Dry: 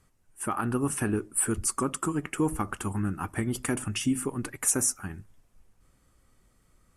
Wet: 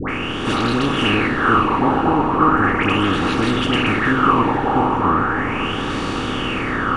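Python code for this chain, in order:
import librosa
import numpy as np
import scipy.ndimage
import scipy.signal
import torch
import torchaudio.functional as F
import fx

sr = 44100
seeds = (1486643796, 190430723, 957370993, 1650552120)

p1 = fx.bin_compress(x, sr, power=0.2)
p2 = fx.high_shelf(p1, sr, hz=4300.0, db=-10.5)
p3 = fx.fold_sine(p2, sr, drive_db=12, ceiling_db=-2.0)
p4 = p2 + F.gain(torch.from_numpy(p3), -6.0).numpy()
p5 = fx.dispersion(p4, sr, late='highs', ms=93.0, hz=1100.0)
p6 = fx.filter_lfo_lowpass(p5, sr, shape='sine', hz=0.37, low_hz=830.0, high_hz=4000.0, q=6.2)
p7 = p6 + fx.echo_diffused(p6, sr, ms=529, feedback_pct=53, wet_db=-11.0, dry=0)
y = F.gain(torch.from_numpy(p7), -8.5).numpy()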